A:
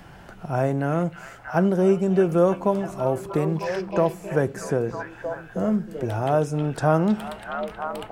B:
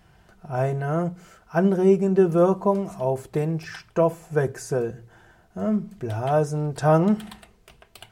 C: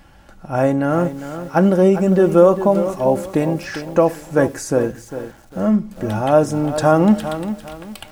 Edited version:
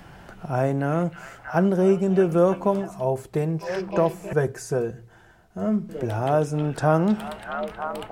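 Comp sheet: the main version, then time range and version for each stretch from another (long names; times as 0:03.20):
A
0:02.87–0:03.65: punch in from B, crossfade 0.16 s
0:04.33–0:05.89: punch in from B
not used: C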